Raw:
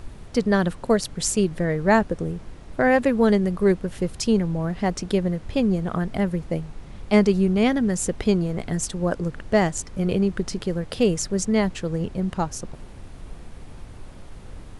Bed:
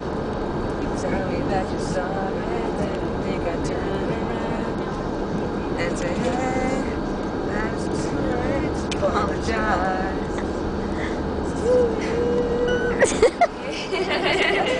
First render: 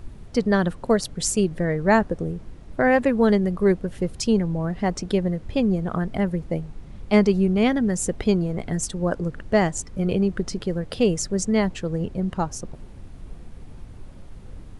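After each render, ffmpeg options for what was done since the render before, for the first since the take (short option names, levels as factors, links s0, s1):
-af "afftdn=nr=6:nf=-42"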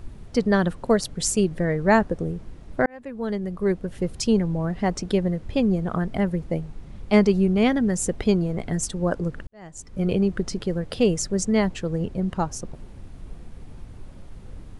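-filter_complex "[0:a]asplit=3[s0][s1][s2];[s0]atrim=end=2.86,asetpts=PTS-STARTPTS,afade=t=out:st=2.856:d=0.004:c=hsin[s3];[s1]atrim=start=2.86:end=9.47,asetpts=PTS-STARTPTS,afade=t=in:d=1.28,afade=t=out:st=6.606:d=0.004:c=hsin[s4];[s2]atrim=start=9.47,asetpts=PTS-STARTPTS,afade=t=in:d=0.55:c=qua[s5];[s3][s4][s5]concat=n=3:v=0:a=1"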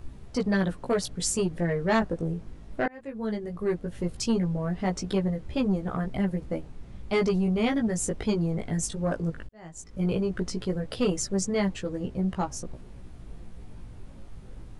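-filter_complex "[0:a]flanger=delay=15.5:depth=3:speed=0.17,acrossover=split=2600[s0][s1];[s0]asoftclip=type=tanh:threshold=0.119[s2];[s2][s1]amix=inputs=2:normalize=0"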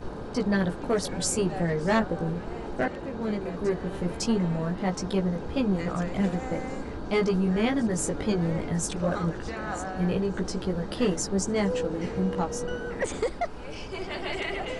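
-filter_complex "[1:a]volume=0.251[s0];[0:a][s0]amix=inputs=2:normalize=0"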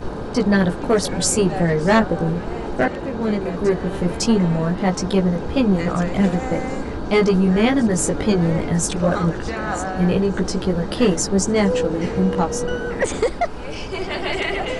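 -af "volume=2.66"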